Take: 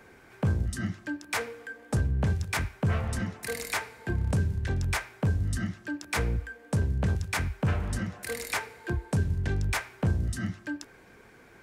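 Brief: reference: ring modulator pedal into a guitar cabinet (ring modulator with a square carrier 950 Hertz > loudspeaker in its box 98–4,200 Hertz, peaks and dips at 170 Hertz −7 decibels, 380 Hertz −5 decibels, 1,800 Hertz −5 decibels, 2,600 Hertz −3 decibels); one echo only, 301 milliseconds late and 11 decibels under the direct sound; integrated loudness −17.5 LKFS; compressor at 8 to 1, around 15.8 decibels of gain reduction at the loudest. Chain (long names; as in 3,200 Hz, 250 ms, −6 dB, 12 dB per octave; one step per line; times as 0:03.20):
downward compressor 8 to 1, threshold −39 dBFS
single-tap delay 301 ms −11 dB
ring modulator with a square carrier 950 Hz
loudspeaker in its box 98–4,200 Hz, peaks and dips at 170 Hz −7 dB, 380 Hz −5 dB, 1,800 Hz −5 dB, 2,600 Hz −3 dB
level +25.5 dB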